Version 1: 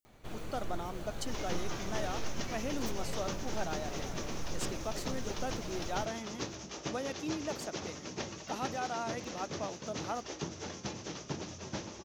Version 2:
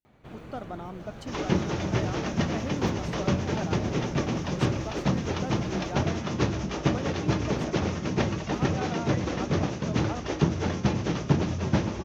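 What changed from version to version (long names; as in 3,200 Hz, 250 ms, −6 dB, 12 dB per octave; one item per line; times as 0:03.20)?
first sound: add high-pass filter 180 Hz 6 dB per octave
second sound +12.0 dB
master: add bass and treble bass +8 dB, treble −13 dB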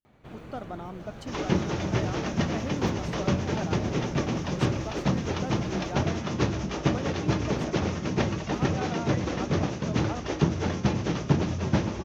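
nothing changed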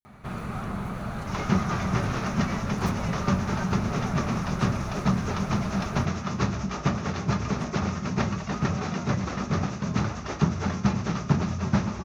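speech −7.5 dB
first sound +10.5 dB
master: add thirty-one-band graphic EQ 200 Hz +5 dB, 315 Hz −10 dB, 500 Hz −7 dB, 1,250 Hz +7 dB, 3,150 Hz −6 dB, 10,000 Hz +10 dB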